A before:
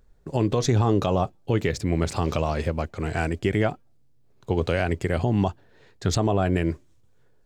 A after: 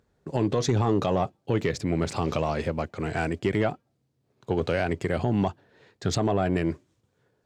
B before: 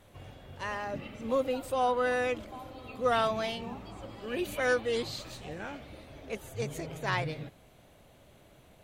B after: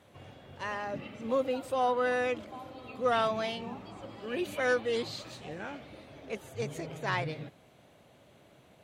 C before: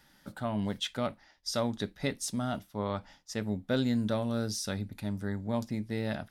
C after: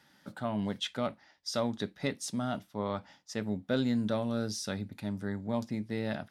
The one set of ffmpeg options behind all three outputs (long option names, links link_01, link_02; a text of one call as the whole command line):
ffmpeg -i in.wav -af "highpass=110,highshelf=frequency=10000:gain=-10,asoftclip=type=tanh:threshold=-13.5dB" out.wav